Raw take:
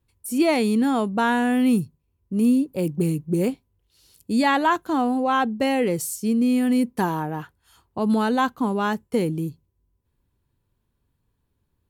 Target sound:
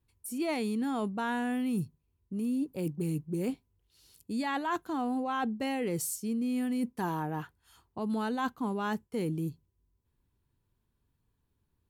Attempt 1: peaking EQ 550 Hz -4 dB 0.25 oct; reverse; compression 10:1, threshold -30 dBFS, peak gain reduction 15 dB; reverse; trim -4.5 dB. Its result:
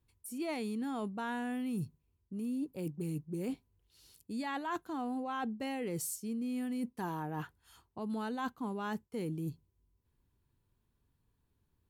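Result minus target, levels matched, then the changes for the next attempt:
compression: peak gain reduction +5.5 dB
change: compression 10:1, threshold -24 dBFS, peak gain reduction 9.5 dB

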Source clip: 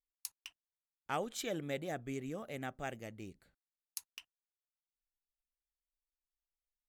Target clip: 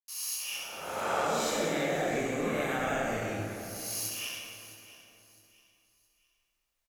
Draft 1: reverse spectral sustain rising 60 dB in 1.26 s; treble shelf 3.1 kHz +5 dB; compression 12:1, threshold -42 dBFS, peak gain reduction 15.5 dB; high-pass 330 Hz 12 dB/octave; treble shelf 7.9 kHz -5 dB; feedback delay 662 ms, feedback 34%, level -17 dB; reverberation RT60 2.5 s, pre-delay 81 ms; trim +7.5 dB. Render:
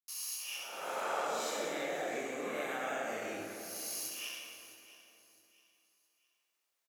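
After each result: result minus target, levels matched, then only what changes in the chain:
compression: peak gain reduction +6 dB; 250 Hz band -4.0 dB
change: compression 12:1, threshold -35.5 dBFS, peak gain reduction 9.5 dB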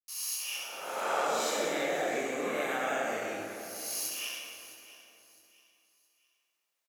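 250 Hz band -4.0 dB
remove: high-pass 330 Hz 12 dB/octave

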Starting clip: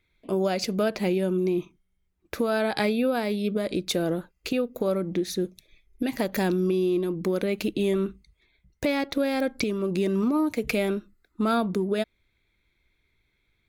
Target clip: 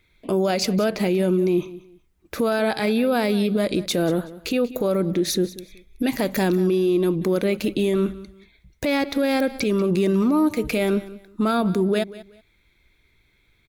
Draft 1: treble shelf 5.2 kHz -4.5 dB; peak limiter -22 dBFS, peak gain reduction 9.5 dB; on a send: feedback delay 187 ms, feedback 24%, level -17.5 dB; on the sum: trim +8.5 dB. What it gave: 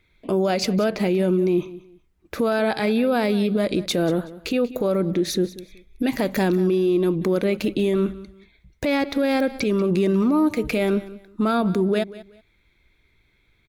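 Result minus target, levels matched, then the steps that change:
8 kHz band -3.5 dB
change: treble shelf 5.2 kHz +2 dB

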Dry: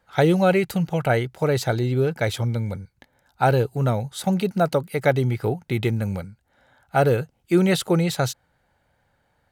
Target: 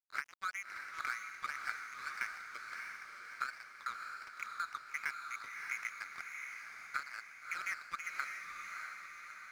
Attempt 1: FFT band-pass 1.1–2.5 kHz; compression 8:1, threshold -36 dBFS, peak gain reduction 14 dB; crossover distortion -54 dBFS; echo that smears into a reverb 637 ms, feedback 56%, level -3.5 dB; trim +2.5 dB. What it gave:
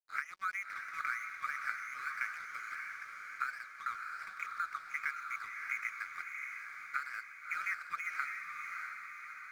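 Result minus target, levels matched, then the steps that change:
crossover distortion: distortion -8 dB
change: crossover distortion -44 dBFS

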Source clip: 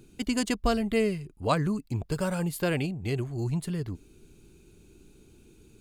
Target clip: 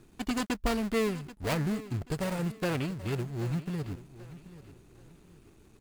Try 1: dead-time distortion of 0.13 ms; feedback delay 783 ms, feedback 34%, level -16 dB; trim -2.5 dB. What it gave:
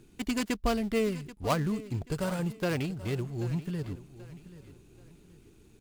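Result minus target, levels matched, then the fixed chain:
dead-time distortion: distortion -8 dB
dead-time distortion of 0.39 ms; feedback delay 783 ms, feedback 34%, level -16 dB; trim -2.5 dB

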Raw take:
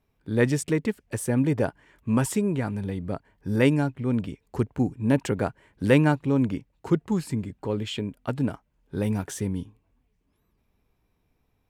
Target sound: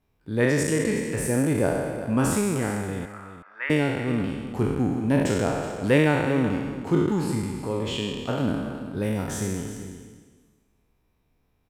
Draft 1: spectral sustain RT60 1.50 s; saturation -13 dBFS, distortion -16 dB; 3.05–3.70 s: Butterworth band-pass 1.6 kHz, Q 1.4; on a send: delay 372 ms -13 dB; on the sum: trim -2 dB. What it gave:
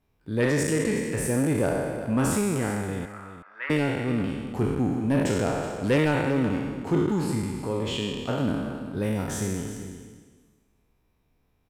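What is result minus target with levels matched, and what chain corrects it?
saturation: distortion +18 dB
spectral sustain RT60 1.50 s; saturation -1.5 dBFS, distortion -34 dB; 3.05–3.70 s: Butterworth band-pass 1.6 kHz, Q 1.4; on a send: delay 372 ms -13 dB; on the sum: trim -2 dB

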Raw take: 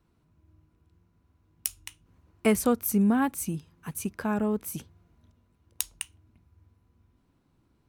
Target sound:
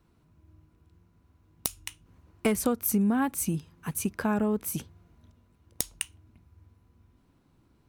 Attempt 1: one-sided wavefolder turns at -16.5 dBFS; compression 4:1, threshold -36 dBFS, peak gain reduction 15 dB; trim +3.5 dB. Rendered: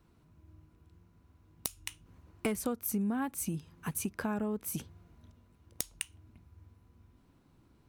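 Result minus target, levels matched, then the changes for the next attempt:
compression: peak gain reduction +7.5 dB
change: compression 4:1, threshold -26 dBFS, peak gain reduction 7.5 dB

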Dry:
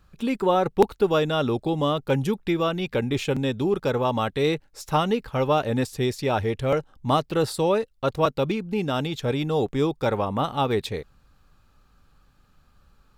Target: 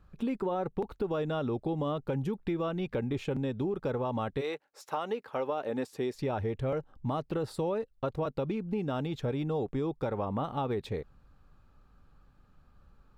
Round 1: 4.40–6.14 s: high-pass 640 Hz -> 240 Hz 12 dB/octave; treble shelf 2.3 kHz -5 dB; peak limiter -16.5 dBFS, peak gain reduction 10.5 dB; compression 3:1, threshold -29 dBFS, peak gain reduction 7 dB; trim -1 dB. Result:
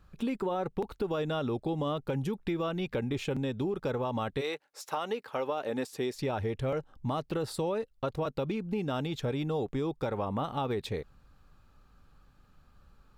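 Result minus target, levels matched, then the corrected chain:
4 kHz band +5.0 dB
4.40–6.14 s: high-pass 640 Hz -> 240 Hz 12 dB/octave; treble shelf 2.3 kHz -13 dB; peak limiter -16.5 dBFS, peak gain reduction 10 dB; compression 3:1, threshold -29 dBFS, peak gain reduction 7 dB; trim -1 dB

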